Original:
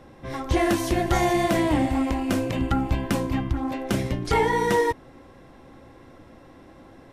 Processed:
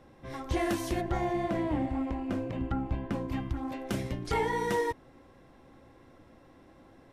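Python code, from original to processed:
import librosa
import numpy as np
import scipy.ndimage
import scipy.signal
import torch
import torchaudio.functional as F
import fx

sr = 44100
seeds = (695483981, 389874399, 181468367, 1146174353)

y = fx.lowpass(x, sr, hz=1300.0, slope=6, at=(1.0, 3.28), fade=0.02)
y = F.gain(torch.from_numpy(y), -8.0).numpy()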